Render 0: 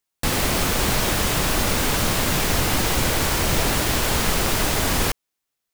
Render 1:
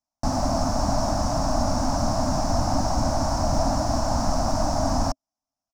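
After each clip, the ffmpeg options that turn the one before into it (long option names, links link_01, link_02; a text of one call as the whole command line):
ffmpeg -i in.wav -af "firequalizer=gain_entry='entry(100,0);entry(160,-5);entry(270,5);entry(410,-25);entry(630,7);entry(2000,-22);entry(3300,-27);entry(5400,-1);entry(8300,-17);entry(14000,-30)':delay=0.05:min_phase=1" out.wav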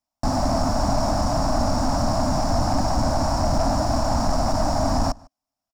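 ffmpeg -i in.wav -filter_complex "[0:a]bandreject=frequency=6200:width=8.7,aeval=exprs='0.355*(cos(1*acos(clip(val(0)/0.355,-1,1)))-cos(1*PI/2))+0.0316*(cos(5*acos(clip(val(0)/0.355,-1,1)))-cos(5*PI/2))':channel_layout=same,asplit=2[link_01][link_02];[link_02]adelay=151.6,volume=-25dB,highshelf=frequency=4000:gain=-3.41[link_03];[link_01][link_03]amix=inputs=2:normalize=0" out.wav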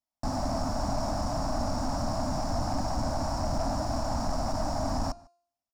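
ffmpeg -i in.wav -af "bandreject=frequency=347.1:width_type=h:width=4,bandreject=frequency=694.2:width_type=h:width=4,bandreject=frequency=1041.3:width_type=h:width=4,bandreject=frequency=1388.4:width_type=h:width=4,bandreject=frequency=1735.5:width_type=h:width=4,bandreject=frequency=2082.6:width_type=h:width=4,bandreject=frequency=2429.7:width_type=h:width=4,bandreject=frequency=2776.8:width_type=h:width=4,bandreject=frequency=3123.9:width_type=h:width=4,bandreject=frequency=3471:width_type=h:width=4,bandreject=frequency=3818.1:width_type=h:width=4,bandreject=frequency=4165.2:width_type=h:width=4,bandreject=frequency=4512.3:width_type=h:width=4,bandreject=frequency=4859.4:width_type=h:width=4,bandreject=frequency=5206.5:width_type=h:width=4,bandreject=frequency=5553.6:width_type=h:width=4,bandreject=frequency=5900.7:width_type=h:width=4,bandreject=frequency=6247.8:width_type=h:width=4,bandreject=frequency=6594.9:width_type=h:width=4,bandreject=frequency=6942:width_type=h:width=4,bandreject=frequency=7289.1:width_type=h:width=4,bandreject=frequency=7636.2:width_type=h:width=4,bandreject=frequency=7983.3:width_type=h:width=4,bandreject=frequency=8330.4:width_type=h:width=4,bandreject=frequency=8677.5:width_type=h:width=4,bandreject=frequency=9024.6:width_type=h:width=4,bandreject=frequency=9371.7:width_type=h:width=4,bandreject=frequency=9718.8:width_type=h:width=4,bandreject=frequency=10065.9:width_type=h:width=4,bandreject=frequency=10413:width_type=h:width=4,volume=-8.5dB" out.wav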